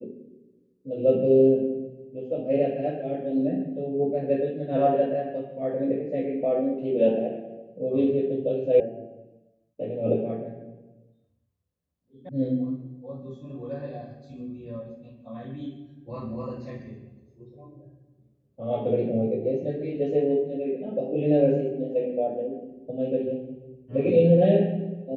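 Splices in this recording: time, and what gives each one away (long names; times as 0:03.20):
0:08.80: cut off before it has died away
0:12.29: cut off before it has died away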